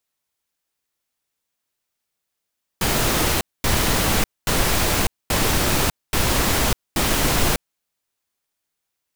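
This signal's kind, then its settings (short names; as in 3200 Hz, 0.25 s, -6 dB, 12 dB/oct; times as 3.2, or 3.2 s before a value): noise bursts pink, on 0.60 s, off 0.23 s, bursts 6, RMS -19 dBFS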